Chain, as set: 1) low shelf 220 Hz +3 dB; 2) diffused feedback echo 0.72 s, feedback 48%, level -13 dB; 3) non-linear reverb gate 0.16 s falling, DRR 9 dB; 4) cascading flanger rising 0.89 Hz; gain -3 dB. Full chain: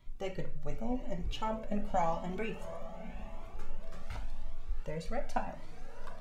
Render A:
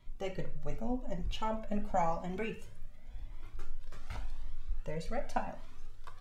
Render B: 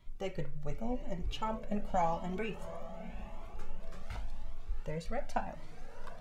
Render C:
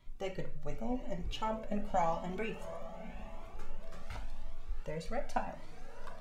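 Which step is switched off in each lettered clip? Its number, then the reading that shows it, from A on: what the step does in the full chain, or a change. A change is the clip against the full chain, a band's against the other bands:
2, momentary loudness spread change +4 LU; 3, momentary loudness spread change +1 LU; 1, 125 Hz band -2.0 dB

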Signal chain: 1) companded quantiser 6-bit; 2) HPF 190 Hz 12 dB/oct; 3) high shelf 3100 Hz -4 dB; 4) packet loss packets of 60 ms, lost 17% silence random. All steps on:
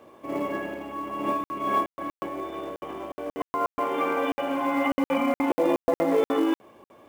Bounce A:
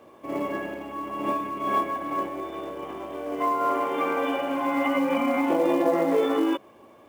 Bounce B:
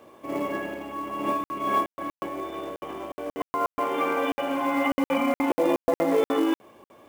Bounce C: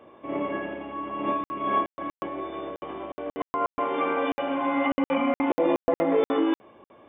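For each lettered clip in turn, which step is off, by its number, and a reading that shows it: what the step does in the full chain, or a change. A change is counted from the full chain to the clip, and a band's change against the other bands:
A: 4, loudness change +1.0 LU; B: 3, 8 kHz band +3.0 dB; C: 1, distortion -26 dB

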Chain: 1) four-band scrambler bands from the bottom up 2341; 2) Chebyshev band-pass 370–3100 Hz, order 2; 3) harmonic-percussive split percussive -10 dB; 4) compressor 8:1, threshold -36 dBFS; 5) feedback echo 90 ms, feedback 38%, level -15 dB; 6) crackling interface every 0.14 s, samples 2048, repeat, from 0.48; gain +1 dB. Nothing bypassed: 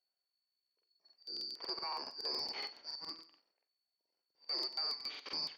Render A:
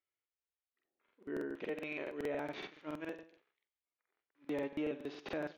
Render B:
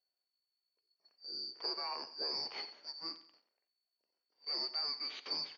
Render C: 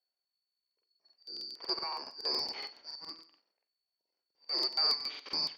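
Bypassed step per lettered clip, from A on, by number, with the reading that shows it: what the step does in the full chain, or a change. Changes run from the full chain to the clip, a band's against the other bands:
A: 1, 4 kHz band -28.5 dB; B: 6, 8 kHz band -2.5 dB; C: 4, mean gain reduction 2.5 dB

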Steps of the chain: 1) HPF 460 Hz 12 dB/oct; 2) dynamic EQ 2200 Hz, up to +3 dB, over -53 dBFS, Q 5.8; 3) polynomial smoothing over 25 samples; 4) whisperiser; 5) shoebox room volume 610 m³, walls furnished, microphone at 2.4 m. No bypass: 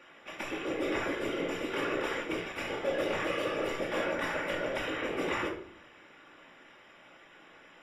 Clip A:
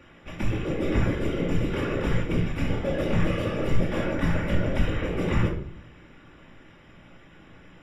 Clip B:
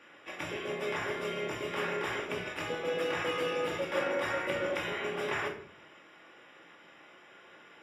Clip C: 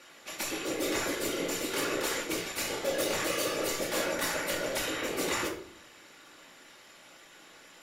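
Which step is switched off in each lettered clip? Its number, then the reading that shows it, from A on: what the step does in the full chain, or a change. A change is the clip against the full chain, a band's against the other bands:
1, 125 Hz band +22.0 dB; 4, 250 Hz band -5.0 dB; 3, 8 kHz band +17.5 dB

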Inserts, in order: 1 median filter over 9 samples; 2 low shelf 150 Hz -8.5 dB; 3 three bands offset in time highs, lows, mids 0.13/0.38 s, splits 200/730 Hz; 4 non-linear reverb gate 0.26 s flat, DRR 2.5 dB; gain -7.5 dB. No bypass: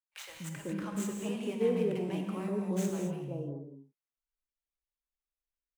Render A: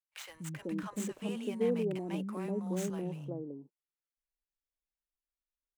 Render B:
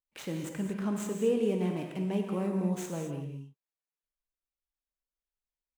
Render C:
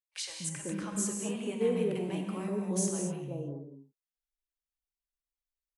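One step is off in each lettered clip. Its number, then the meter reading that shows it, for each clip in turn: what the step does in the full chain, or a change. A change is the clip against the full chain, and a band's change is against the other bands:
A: 4, echo-to-direct -1.0 dB to -8.5 dB; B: 3, momentary loudness spread change -2 LU; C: 1, 8 kHz band +11.0 dB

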